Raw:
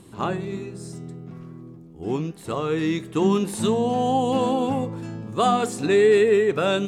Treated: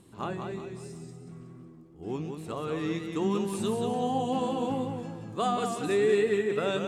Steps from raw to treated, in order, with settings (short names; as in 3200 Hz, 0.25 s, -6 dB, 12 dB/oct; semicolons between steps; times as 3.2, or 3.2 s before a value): warbling echo 0.184 s, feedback 40%, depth 74 cents, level -5.5 dB; gain -8.5 dB